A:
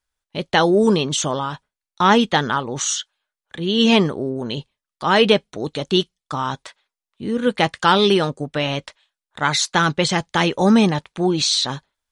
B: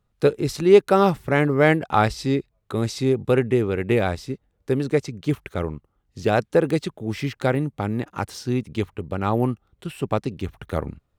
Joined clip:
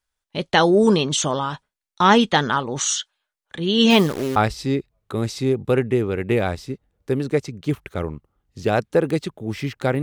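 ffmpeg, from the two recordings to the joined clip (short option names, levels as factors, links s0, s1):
-filter_complex "[0:a]asettb=1/sr,asplit=3[s0][s1][s2];[s0]atrim=end=3.904[s3];[s1]atrim=start=3.9:end=4.36,asetpts=PTS-STARTPTS,afade=t=in:d=0.004:c=qsin,afade=t=out:st=0.456:d=0.004:c=qsin,acrusher=bits=6:dc=4:mix=0:aa=0.000001[s4];[s2]atrim=start=4.356[s5];[s3][s4]acrossfade=d=0.004:c1=hsin:c2=qsin[s6];[s6][s5]acrossfade=d=0.004:c1=qsin:c2=hsin,apad=whole_dur=10.02,atrim=end=10.02,atrim=end=4.362[s7];[1:a]atrim=start=1.958:end=7.62[s8];[s7][s8]acrossfade=d=0.004:c1=hsin:c2=hsin"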